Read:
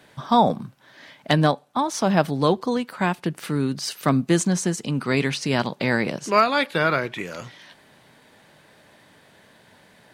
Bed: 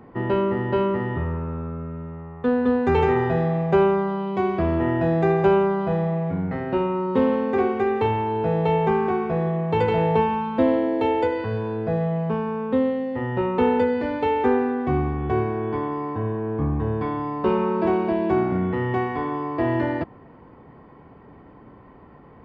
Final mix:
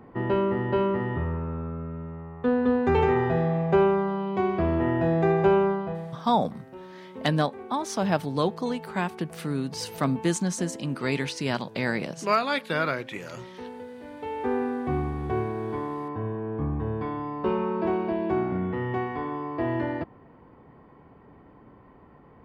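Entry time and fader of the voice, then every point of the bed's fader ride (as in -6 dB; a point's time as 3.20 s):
5.95 s, -5.5 dB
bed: 5.70 s -2.5 dB
6.28 s -20.5 dB
13.88 s -20.5 dB
14.62 s -5 dB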